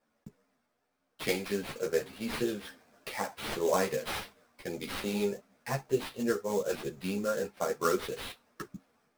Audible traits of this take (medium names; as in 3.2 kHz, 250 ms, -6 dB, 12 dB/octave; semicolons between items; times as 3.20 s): aliases and images of a low sample rate 7 kHz, jitter 20%; a shimmering, thickened sound